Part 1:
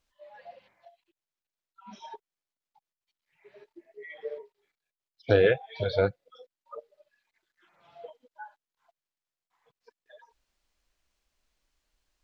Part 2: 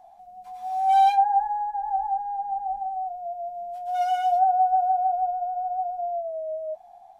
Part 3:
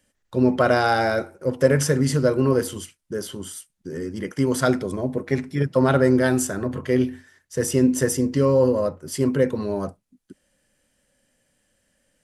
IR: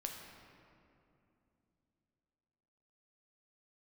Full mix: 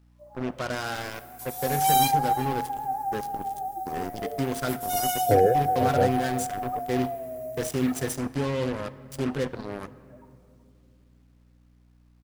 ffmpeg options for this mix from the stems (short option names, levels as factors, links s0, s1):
-filter_complex "[0:a]lowpass=f=1200:w=0.5412,lowpass=f=1200:w=1.3066,aeval=exprs='val(0)+0.00141*(sin(2*PI*60*n/s)+sin(2*PI*2*60*n/s)/2+sin(2*PI*3*60*n/s)/3+sin(2*PI*4*60*n/s)/4+sin(2*PI*5*60*n/s)/5)':c=same,volume=0.944,asplit=3[s0][s1][s2];[s1]volume=0.2[s3];[s2]volume=0.15[s4];[1:a]aemphasis=mode=production:type=riaa,crystalizer=i=3.5:c=0,adelay=950,volume=0.631,asplit=2[s5][s6];[s6]volume=0.112[s7];[2:a]adynamicequalizer=threshold=0.0224:dfrequency=600:dqfactor=0.96:tfrequency=600:tqfactor=0.96:attack=5:release=100:ratio=0.375:range=4:mode=cutabove:tftype=bell,dynaudnorm=f=420:g=3:m=4.47,acrusher=bits=2:mix=0:aa=0.5,volume=0.15,asplit=2[s8][s9];[s9]volume=0.398[s10];[3:a]atrim=start_sample=2205[s11];[s3][s10]amix=inputs=2:normalize=0[s12];[s12][s11]afir=irnorm=-1:irlink=0[s13];[s4][s7]amix=inputs=2:normalize=0,aecho=0:1:371:1[s14];[s0][s5][s8][s13][s14]amix=inputs=5:normalize=0,acrusher=bits=11:mix=0:aa=0.000001"